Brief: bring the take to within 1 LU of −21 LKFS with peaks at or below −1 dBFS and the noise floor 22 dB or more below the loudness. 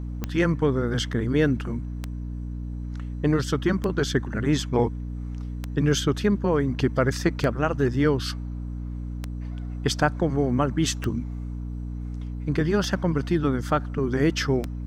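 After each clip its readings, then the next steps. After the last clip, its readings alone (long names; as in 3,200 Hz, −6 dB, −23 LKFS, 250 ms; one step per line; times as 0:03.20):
number of clicks 9; mains hum 60 Hz; hum harmonics up to 300 Hz; level of the hum −29 dBFS; integrated loudness −25.5 LKFS; sample peak −6.5 dBFS; target loudness −21.0 LKFS
→ click removal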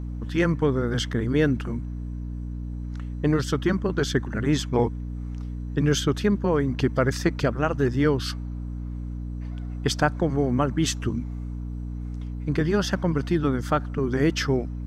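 number of clicks 0; mains hum 60 Hz; hum harmonics up to 300 Hz; level of the hum −29 dBFS
→ mains-hum notches 60/120/180/240/300 Hz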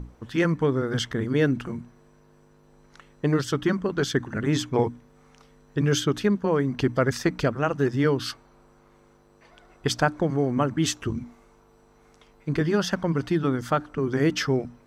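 mains hum none found; integrated loudness −25.5 LKFS; sample peak −7.0 dBFS; target loudness −21.0 LKFS
→ level +4.5 dB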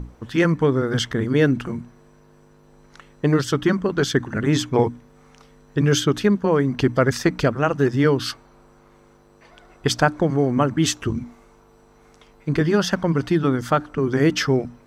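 integrated loudness −21.0 LKFS; sample peak −2.5 dBFS; background noise floor −53 dBFS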